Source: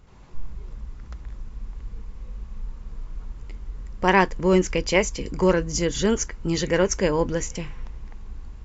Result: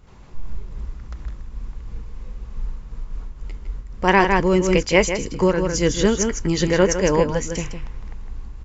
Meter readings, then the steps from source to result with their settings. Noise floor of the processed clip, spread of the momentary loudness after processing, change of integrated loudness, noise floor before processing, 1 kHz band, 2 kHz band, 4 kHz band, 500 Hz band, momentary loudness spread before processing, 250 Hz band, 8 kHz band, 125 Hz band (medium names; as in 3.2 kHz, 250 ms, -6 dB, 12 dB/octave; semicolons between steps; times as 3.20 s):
-39 dBFS, 21 LU, +3.5 dB, -41 dBFS, +3.5 dB, +3.5 dB, +3.0 dB, +3.5 dB, 21 LU, +3.5 dB, no reading, +4.0 dB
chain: echo from a far wall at 27 m, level -6 dB; random flutter of the level, depth 65%; trim +5.5 dB